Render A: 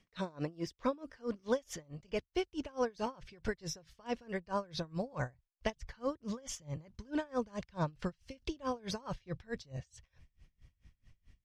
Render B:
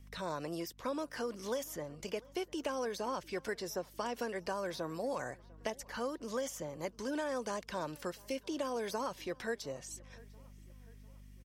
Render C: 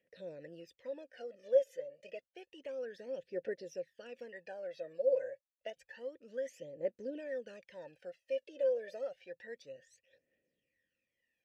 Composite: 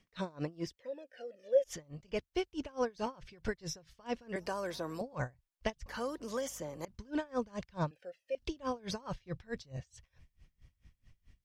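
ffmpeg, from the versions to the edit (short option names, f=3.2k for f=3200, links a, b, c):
-filter_complex "[2:a]asplit=2[a][b];[1:a]asplit=2[c][d];[0:a]asplit=5[e][f][g][h][i];[e]atrim=end=0.762[j];[a]atrim=start=0.758:end=1.642[k];[f]atrim=start=1.638:end=4.362[l];[c]atrim=start=4.358:end=5.012[m];[g]atrim=start=5.008:end=5.862[n];[d]atrim=start=5.858:end=6.852[o];[h]atrim=start=6.848:end=7.912[p];[b]atrim=start=7.908:end=8.352[q];[i]atrim=start=8.348[r];[j][k]acrossfade=d=0.004:c1=hsin:c2=hsin[s];[s][l]acrossfade=d=0.004:c1=hsin:c2=hsin[t];[t][m]acrossfade=d=0.004:c1=hsin:c2=hsin[u];[u][n]acrossfade=d=0.004:c1=hsin:c2=hsin[v];[v][o]acrossfade=d=0.004:c1=hsin:c2=hsin[w];[w][p]acrossfade=d=0.004:c1=hsin:c2=hsin[x];[x][q]acrossfade=d=0.004:c1=hsin:c2=hsin[y];[y][r]acrossfade=d=0.004:c1=hsin:c2=hsin"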